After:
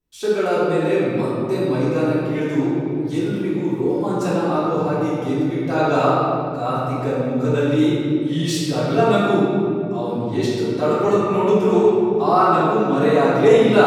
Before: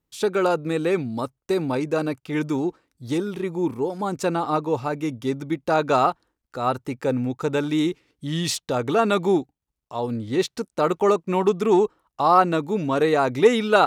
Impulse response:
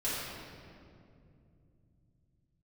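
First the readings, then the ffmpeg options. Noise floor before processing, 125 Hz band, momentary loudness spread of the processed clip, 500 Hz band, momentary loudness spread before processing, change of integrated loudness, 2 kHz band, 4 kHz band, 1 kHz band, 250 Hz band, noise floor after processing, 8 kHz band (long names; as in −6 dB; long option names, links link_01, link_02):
−83 dBFS, +7.0 dB, 7 LU, +4.5 dB, 10 LU, +4.0 dB, +2.5 dB, +1.5 dB, +2.0 dB, +5.5 dB, −25 dBFS, 0.0 dB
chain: -filter_complex "[1:a]atrim=start_sample=2205[link_01];[0:a][link_01]afir=irnorm=-1:irlink=0,volume=-4dB"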